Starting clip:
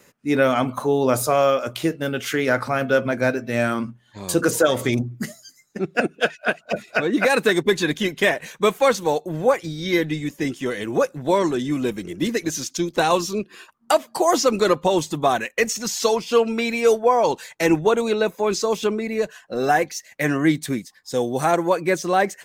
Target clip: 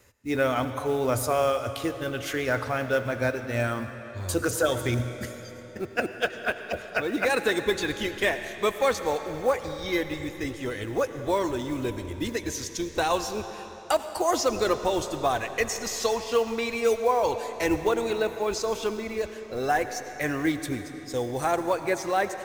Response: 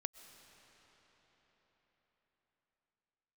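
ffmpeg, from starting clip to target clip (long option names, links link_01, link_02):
-filter_complex "[0:a]acrusher=bits=7:mode=log:mix=0:aa=0.000001,lowshelf=frequency=120:width_type=q:width=3:gain=10.5[link_01];[1:a]atrim=start_sample=2205,asetrate=61740,aresample=44100[link_02];[link_01][link_02]afir=irnorm=-1:irlink=0"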